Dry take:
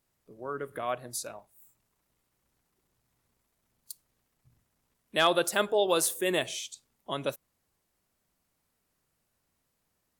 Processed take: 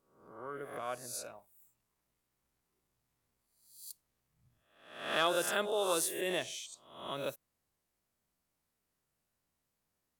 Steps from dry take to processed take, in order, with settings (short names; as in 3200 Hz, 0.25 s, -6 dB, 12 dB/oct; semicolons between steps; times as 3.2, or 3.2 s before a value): spectral swells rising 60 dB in 0.67 s; gain -8.5 dB